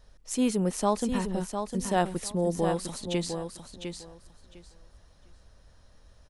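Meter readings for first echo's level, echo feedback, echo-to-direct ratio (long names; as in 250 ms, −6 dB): −7.0 dB, 18%, −7.0 dB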